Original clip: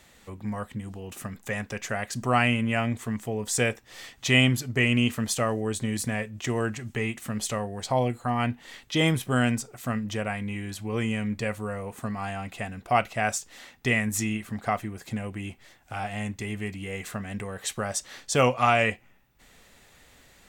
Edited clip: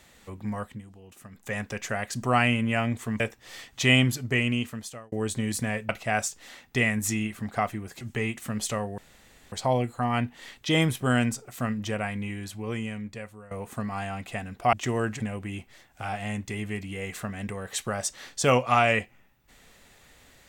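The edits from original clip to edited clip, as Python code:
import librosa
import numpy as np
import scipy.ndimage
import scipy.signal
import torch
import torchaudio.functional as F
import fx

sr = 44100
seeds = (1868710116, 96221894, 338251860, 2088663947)

y = fx.edit(x, sr, fx.fade_down_up(start_s=0.6, length_s=0.97, db=-11.0, fade_s=0.27),
    fx.cut(start_s=3.2, length_s=0.45),
    fx.fade_out_span(start_s=4.65, length_s=0.92),
    fx.swap(start_s=6.34, length_s=0.47, other_s=12.99, other_length_s=2.12),
    fx.insert_room_tone(at_s=7.78, length_s=0.54),
    fx.fade_out_to(start_s=10.45, length_s=1.32, floor_db=-18.0), tone=tone)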